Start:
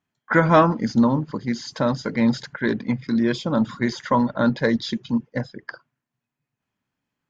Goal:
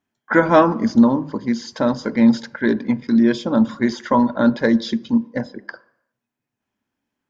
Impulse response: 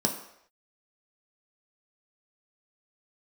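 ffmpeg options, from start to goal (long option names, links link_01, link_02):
-filter_complex "[0:a]asplit=2[link_01][link_02];[link_02]highpass=63[link_03];[1:a]atrim=start_sample=2205,highshelf=frequency=6000:gain=-10[link_04];[link_03][link_04]afir=irnorm=-1:irlink=0,volume=-18dB[link_05];[link_01][link_05]amix=inputs=2:normalize=0"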